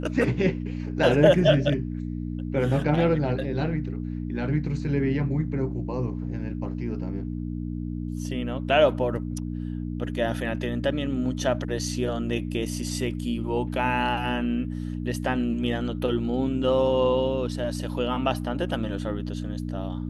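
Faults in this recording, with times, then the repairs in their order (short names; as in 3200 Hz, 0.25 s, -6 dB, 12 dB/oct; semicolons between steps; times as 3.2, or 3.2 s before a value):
hum 60 Hz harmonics 5 -31 dBFS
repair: de-hum 60 Hz, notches 5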